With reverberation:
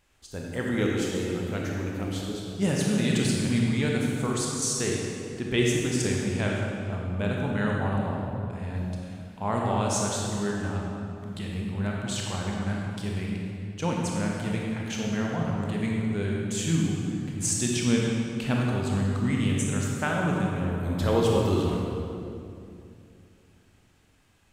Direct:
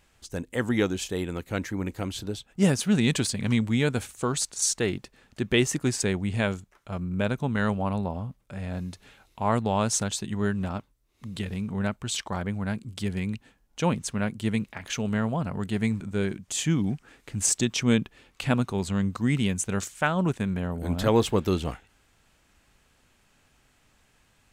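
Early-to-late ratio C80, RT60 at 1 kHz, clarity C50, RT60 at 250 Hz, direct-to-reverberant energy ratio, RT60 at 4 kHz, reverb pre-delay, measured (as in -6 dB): 0.5 dB, 2.4 s, -1.0 dB, 3.2 s, -2.5 dB, 1.8 s, 24 ms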